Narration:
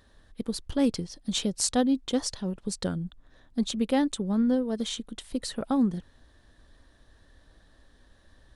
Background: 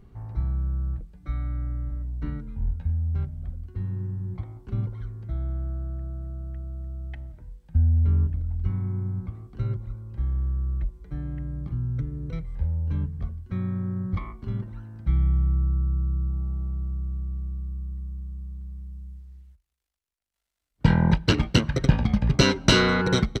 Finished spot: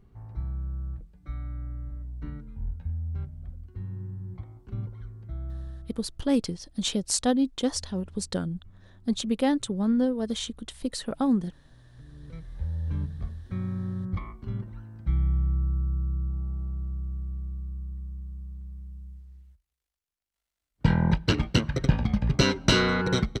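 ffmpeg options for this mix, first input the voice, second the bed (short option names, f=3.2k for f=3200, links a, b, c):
-filter_complex "[0:a]adelay=5500,volume=0.5dB[a];[1:a]volume=18.5dB,afade=t=out:st=5.57:d=0.49:silence=0.0841395,afade=t=in:st=11.93:d=0.95:silence=0.0595662[b];[a][b]amix=inputs=2:normalize=0"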